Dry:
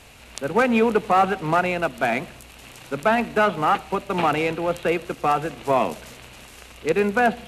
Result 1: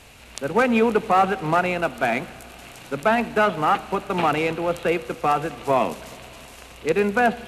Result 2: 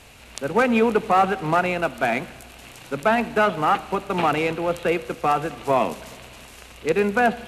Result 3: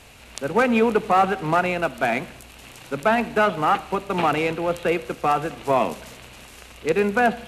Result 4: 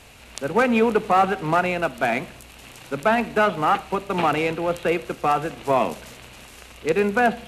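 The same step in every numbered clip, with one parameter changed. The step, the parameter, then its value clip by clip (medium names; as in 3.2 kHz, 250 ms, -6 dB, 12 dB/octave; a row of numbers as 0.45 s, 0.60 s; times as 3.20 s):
Schroeder reverb, RT60: 4.4 s, 2.1 s, 0.89 s, 0.34 s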